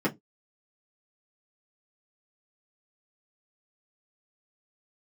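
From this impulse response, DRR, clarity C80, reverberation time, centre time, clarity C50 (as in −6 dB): −7.0 dB, 33.5 dB, non-exponential decay, 14 ms, 22.0 dB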